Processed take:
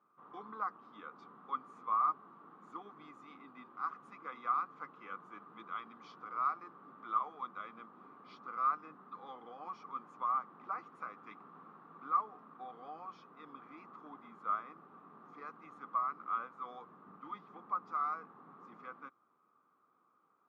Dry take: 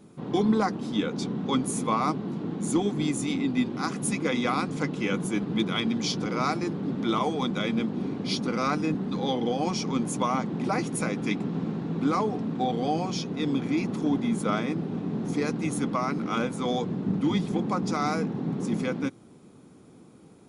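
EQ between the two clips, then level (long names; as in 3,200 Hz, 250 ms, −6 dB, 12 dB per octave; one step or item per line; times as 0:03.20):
resonant band-pass 1,200 Hz, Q 11
high-frequency loss of the air 100 metres
+2.0 dB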